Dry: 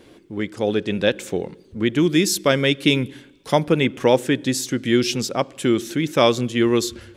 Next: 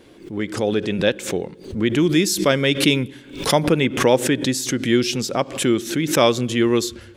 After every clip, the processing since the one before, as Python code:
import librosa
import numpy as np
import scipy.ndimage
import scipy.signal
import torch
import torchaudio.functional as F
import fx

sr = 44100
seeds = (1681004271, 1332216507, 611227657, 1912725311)

y = fx.pre_swell(x, sr, db_per_s=110.0)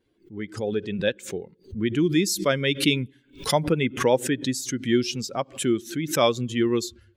y = fx.bin_expand(x, sr, power=1.5)
y = y * 10.0 ** (-2.5 / 20.0)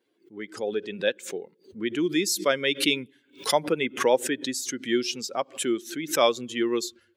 y = scipy.signal.sosfilt(scipy.signal.butter(2, 330.0, 'highpass', fs=sr, output='sos'), x)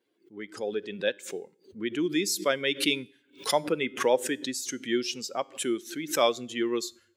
y = fx.comb_fb(x, sr, f0_hz=100.0, decay_s=0.52, harmonics='all', damping=0.0, mix_pct=30)